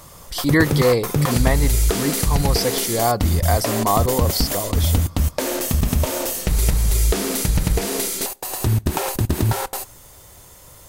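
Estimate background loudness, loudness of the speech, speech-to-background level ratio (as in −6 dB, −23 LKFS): −21.0 LKFS, −22.5 LKFS, −1.5 dB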